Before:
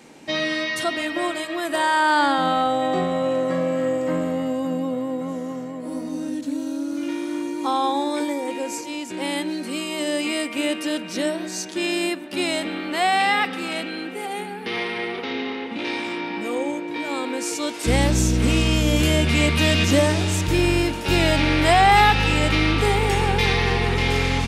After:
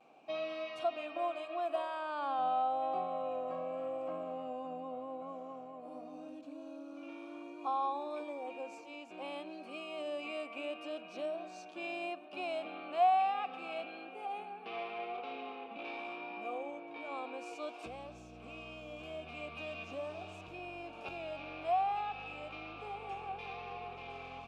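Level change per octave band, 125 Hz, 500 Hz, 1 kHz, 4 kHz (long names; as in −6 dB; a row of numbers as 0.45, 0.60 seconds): below −30 dB, −15.0 dB, −13.0 dB, −25.0 dB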